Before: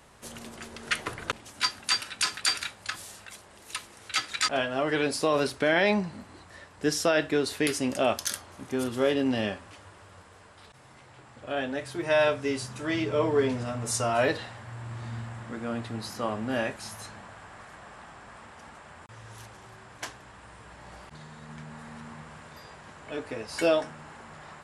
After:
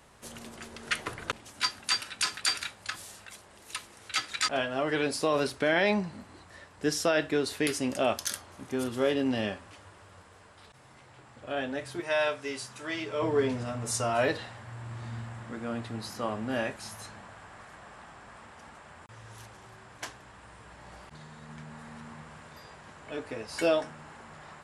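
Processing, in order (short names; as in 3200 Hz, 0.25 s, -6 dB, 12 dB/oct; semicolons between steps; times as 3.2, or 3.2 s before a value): 12–13.22 low shelf 380 Hz -11.5 dB; gain -2 dB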